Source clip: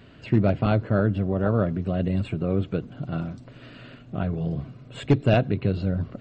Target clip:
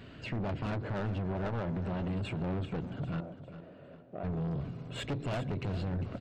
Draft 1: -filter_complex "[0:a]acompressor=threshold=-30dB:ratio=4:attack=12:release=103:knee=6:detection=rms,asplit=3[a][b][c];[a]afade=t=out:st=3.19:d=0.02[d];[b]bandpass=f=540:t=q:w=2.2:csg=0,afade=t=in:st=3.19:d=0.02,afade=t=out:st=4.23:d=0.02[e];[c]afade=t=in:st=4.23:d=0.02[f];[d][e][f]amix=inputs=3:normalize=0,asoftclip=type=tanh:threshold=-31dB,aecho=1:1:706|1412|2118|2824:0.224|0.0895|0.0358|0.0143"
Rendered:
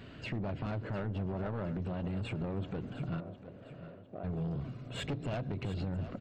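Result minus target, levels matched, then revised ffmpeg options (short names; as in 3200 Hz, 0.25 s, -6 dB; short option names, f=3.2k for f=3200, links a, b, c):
echo 0.305 s late; compressor: peak gain reduction +6 dB
-filter_complex "[0:a]acompressor=threshold=-22dB:ratio=4:attack=12:release=103:knee=6:detection=rms,asplit=3[a][b][c];[a]afade=t=out:st=3.19:d=0.02[d];[b]bandpass=f=540:t=q:w=2.2:csg=0,afade=t=in:st=3.19:d=0.02,afade=t=out:st=4.23:d=0.02[e];[c]afade=t=in:st=4.23:d=0.02[f];[d][e][f]amix=inputs=3:normalize=0,asoftclip=type=tanh:threshold=-31dB,aecho=1:1:401|802|1203|1604:0.224|0.0895|0.0358|0.0143"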